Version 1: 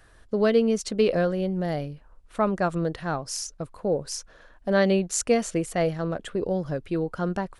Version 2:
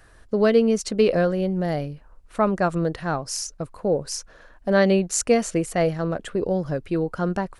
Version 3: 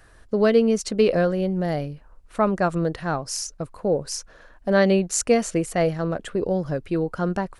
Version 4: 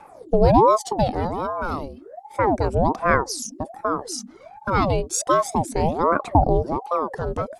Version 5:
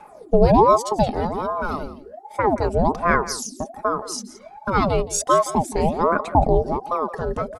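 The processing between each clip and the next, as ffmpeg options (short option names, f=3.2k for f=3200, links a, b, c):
-af "equalizer=f=3.4k:w=4.3:g=-3.5,volume=3dB"
-af anull
-af "aphaser=in_gain=1:out_gain=1:delay=1.4:decay=0.7:speed=0.32:type=triangular,equalizer=f=125:t=o:w=1:g=-10,equalizer=f=250:t=o:w=1:g=11,equalizer=f=2k:t=o:w=1:g=-9,aeval=exprs='val(0)*sin(2*PI*540*n/s+540*0.6/1.3*sin(2*PI*1.3*n/s))':c=same"
-af "aecho=1:1:4.8:0.39,aecho=1:1:171:0.158"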